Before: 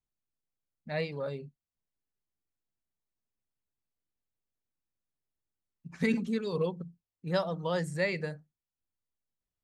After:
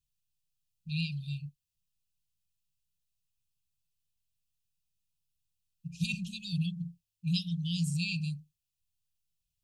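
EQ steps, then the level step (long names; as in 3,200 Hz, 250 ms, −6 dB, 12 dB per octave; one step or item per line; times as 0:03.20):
linear-phase brick-wall band-stop 190–2,400 Hz
+6.5 dB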